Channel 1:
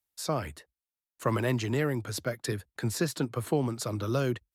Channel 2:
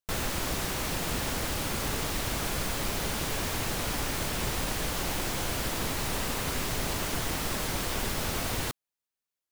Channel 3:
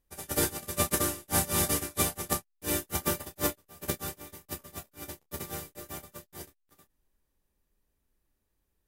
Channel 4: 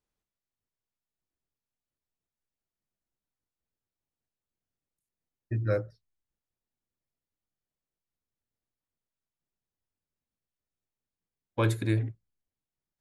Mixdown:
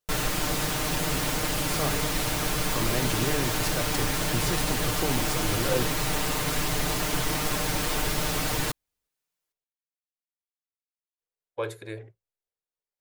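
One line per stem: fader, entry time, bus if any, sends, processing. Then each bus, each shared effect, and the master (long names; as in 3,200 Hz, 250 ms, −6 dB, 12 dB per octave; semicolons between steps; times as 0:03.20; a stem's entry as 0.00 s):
0.0 dB, 1.50 s, no send, brickwall limiter −21.5 dBFS, peak gain reduction 7 dB
+1.0 dB, 0.00 s, no send, comb filter 6.6 ms, depth 97%
−14.5 dB, 0.20 s, no send, no processing
−5.0 dB, 0.00 s, muted 0:09.64–0:11.19, no send, low shelf with overshoot 340 Hz −9.5 dB, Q 3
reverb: not used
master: no processing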